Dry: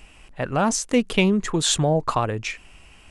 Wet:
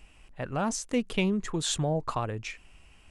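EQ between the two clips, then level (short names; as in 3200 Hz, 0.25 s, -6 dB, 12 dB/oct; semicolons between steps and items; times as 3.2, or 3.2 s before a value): low shelf 150 Hz +4 dB; -9.0 dB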